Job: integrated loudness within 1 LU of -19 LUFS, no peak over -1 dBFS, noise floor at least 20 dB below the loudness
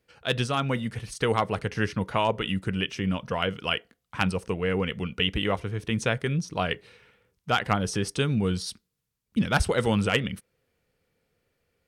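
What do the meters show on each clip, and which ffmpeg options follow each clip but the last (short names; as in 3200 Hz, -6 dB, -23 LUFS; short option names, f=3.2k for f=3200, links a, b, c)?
loudness -27.5 LUFS; peak -10.5 dBFS; loudness target -19.0 LUFS
-> -af "volume=8.5dB"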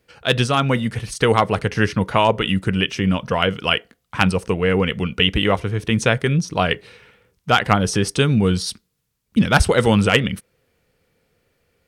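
loudness -19.0 LUFS; peak -2.0 dBFS; noise floor -71 dBFS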